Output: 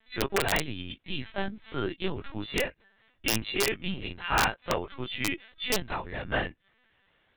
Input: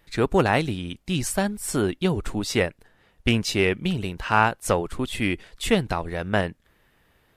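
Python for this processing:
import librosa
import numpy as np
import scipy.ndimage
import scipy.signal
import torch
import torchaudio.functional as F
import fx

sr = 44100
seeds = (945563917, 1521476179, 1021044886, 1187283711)

y = fx.freq_snap(x, sr, grid_st=2)
y = fx.lpc_vocoder(y, sr, seeds[0], excitation='pitch_kept', order=16)
y = (np.mod(10.0 ** (7.5 / 20.0) * y + 1.0, 2.0) - 1.0) / 10.0 ** (7.5 / 20.0)
y = y * librosa.db_to_amplitude(-7.0)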